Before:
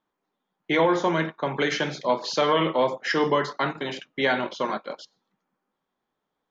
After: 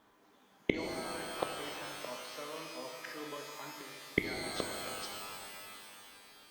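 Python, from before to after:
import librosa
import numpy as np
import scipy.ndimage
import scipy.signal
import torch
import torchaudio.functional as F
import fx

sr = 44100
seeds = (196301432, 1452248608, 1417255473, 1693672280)

y = fx.notch_comb(x, sr, f0_hz=180.0)
y = fx.gate_flip(y, sr, shuts_db=-27.0, range_db=-39)
y = fx.rev_shimmer(y, sr, seeds[0], rt60_s=2.8, semitones=12, shimmer_db=-2, drr_db=4.0)
y = y * 10.0 ** (15.5 / 20.0)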